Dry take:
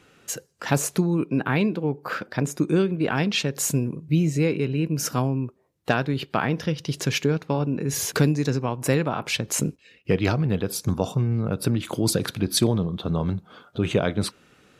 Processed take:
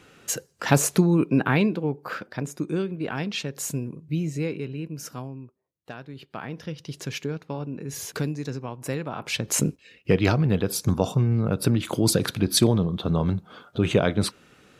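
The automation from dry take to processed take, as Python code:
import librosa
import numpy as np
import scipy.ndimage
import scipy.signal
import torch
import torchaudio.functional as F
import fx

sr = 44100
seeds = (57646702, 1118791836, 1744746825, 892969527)

y = fx.gain(x, sr, db=fx.line((1.35, 3.0), (2.45, -6.0), (4.45, -6.0), (5.9, -17.5), (6.75, -8.0), (9.03, -8.0), (9.54, 1.5)))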